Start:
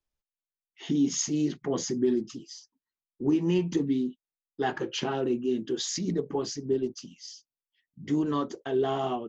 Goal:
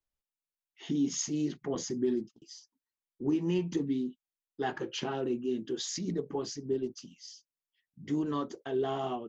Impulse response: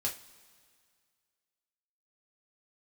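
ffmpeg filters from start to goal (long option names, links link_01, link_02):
-filter_complex "[0:a]asettb=1/sr,asplit=3[link_01][link_02][link_03];[link_01]atrim=end=1.754[link_04];[link_02]atrim=start=1.75:end=2.42,asetpts=PTS-STARTPTS,afade=type=in:duration=0.004:curve=qsin,afade=type=out:start_time=0.666:duration=0.004:curve=qsin,agate=range=-40dB:threshold=-34dB:ratio=16:detection=peak[link_05];[link_03]atrim=start=2.416[link_06];[link_04][link_05]acrossfade=duration=0.004:curve1=hsin:curve2=qsin[link_07];[link_07][link_06]acrossfade=duration=0.004:curve1=qsin:curve2=hsin,volume=-4.5dB"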